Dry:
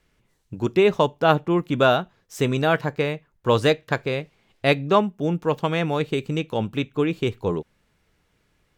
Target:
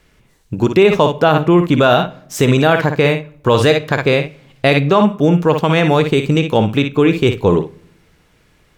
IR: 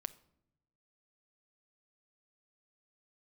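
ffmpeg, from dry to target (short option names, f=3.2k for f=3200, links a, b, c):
-filter_complex "[0:a]asplit=2[a][b];[b]equalizer=f=2.3k:w=1.5:g=3.5[c];[1:a]atrim=start_sample=2205,adelay=57[d];[c][d]afir=irnorm=-1:irlink=0,volume=-8dB[e];[a][e]amix=inputs=2:normalize=0,alimiter=level_in=13dB:limit=-1dB:release=50:level=0:latency=1,volume=-1dB"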